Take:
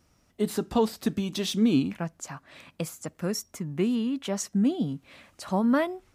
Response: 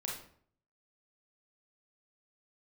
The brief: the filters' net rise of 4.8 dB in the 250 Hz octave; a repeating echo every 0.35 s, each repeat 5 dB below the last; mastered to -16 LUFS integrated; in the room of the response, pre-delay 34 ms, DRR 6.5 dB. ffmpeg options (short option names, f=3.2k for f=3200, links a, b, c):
-filter_complex "[0:a]equalizer=f=250:t=o:g=5.5,aecho=1:1:350|700|1050|1400|1750|2100|2450:0.562|0.315|0.176|0.0988|0.0553|0.031|0.0173,asplit=2[a][b];[1:a]atrim=start_sample=2205,adelay=34[c];[b][c]afir=irnorm=-1:irlink=0,volume=-7.5dB[d];[a][d]amix=inputs=2:normalize=0,volume=6.5dB"